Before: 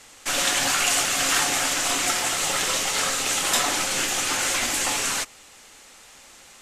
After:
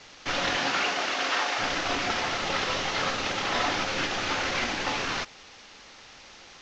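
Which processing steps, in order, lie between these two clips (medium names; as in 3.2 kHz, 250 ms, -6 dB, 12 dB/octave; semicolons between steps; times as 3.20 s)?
CVSD coder 32 kbps; 0.56–1.58 s: high-pass 160 Hz -> 520 Hz 12 dB/octave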